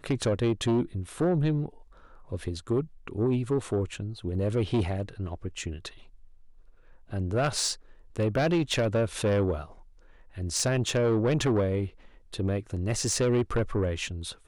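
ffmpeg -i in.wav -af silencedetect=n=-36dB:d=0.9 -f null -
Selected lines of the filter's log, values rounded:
silence_start: 5.89
silence_end: 7.12 | silence_duration: 1.24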